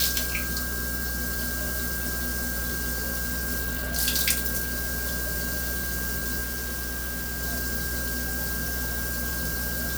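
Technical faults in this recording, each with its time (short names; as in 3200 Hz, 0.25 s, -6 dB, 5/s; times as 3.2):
buzz 60 Hz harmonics 9 -34 dBFS
tone 1600 Hz -34 dBFS
6.43–7.43 clipped -27.5 dBFS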